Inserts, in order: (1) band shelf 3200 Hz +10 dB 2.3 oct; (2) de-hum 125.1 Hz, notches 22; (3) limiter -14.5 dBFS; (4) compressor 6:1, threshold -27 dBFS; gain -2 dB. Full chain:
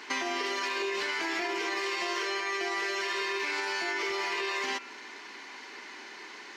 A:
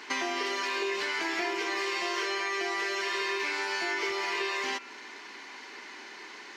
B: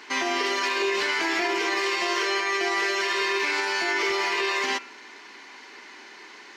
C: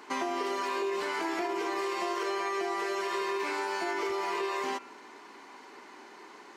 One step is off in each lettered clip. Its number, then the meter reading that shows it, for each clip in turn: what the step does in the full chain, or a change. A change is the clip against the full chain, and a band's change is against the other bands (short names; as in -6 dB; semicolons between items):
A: 3, mean gain reduction 2.5 dB; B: 4, mean gain reduction 4.5 dB; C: 1, momentary loudness spread change +5 LU